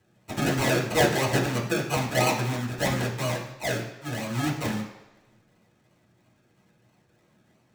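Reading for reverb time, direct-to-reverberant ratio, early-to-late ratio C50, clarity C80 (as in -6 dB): 1.1 s, -5.0 dB, 6.5 dB, 9.5 dB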